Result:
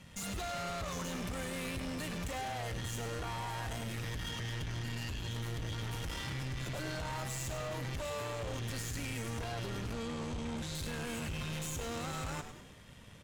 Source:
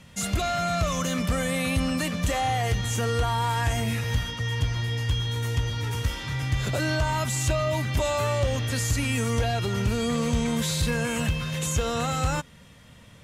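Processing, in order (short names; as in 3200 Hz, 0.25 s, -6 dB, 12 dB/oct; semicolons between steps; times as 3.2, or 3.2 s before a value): 4.83–5.28 ripple EQ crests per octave 1.4, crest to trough 16 dB; limiter -24 dBFS, peak gain reduction 10.5 dB; tube stage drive 37 dB, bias 0.8; 9.93–10.75 air absorption 51 m; frequency-shifting echo 0.101 s, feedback 49%, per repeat -140 Hz, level -9 dB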